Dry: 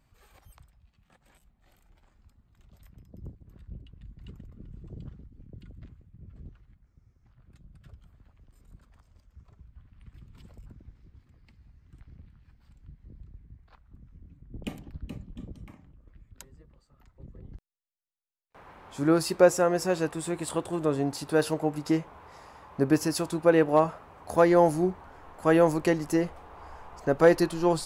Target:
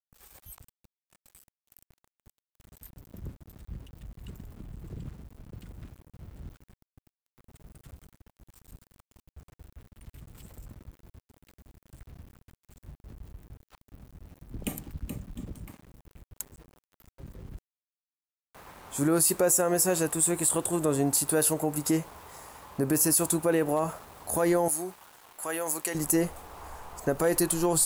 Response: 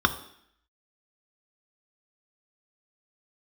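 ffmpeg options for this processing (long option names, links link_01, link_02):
-filter_complex "[0:a]aexciter=amount=6.9:drive=2.9:freq=7200,alimiter=limit=-18.5dB:level=0:latency=1:release=57,asettb=1/sr,asplit=3[link_01][link_02][link_03];[link_01]atrim=end=24.684[link_04];[link_02]atrim=start=24.68:end=25.95,asetpts=PTS-STARTPTS,afade=type=in:duration=0.004:curve=qsin,afade=type=out:start_time=1.266:duration=0.004:curve=qsin,highpass=frequency=1200:poles=1[link_05];[link_03]atrim=start=25.946[link_06];[link_04][link_05]acrossfade=duration=0.004:curve1=hsin:curve2=qsin[link_07];[link_07][link_06]acrossfade=duration=0.004:curve1=qsin:curve2=hsin,aeval=exprs='val(0)*gte(abs(val(0)),0.00251)':channel_layout=same,adynamicequalizer=threshold=0.00501:dfrequency=3900:dqfactor=0.7:tfrequency=3900:tqfactor=0.7:attack=5:release=100:ratio=0.375:range=2:mode=boostabove:tftype=highshelf,volume=2dB"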